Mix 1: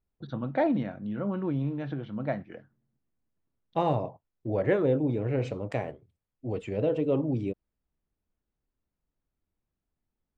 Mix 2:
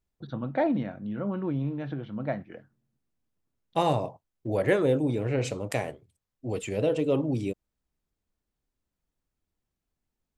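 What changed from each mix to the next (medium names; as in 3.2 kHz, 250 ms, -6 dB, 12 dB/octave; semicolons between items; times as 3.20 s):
second voice: remove tape spacing loss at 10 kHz 26 dB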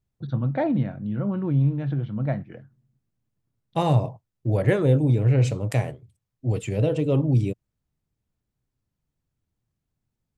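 master: add peaking EQ 120 Hz +13.5 dB 1.1 oct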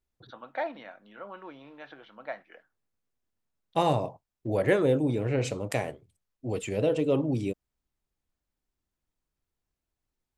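first voice: add high-pass 810 Hz 12 dB/octave; master: add peaking EQ 120 Hz -13.5 dB 1.1 oct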